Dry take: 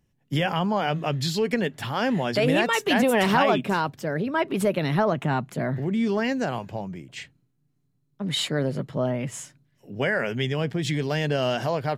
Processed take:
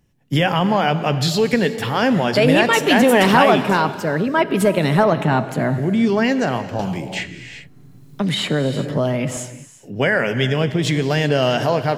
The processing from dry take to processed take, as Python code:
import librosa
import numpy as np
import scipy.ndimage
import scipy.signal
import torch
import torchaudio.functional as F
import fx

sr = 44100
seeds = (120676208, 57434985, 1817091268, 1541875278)

y = fx.rev_gated(x, sr, seeds[0], gate_ms=420, shape='flat', drr_db=11.0)
y = fx.band_squash(y, sr, depth_pct=70, at=(6.79, 9.37))
y = y * librosa.db_to_amplitude(7.0)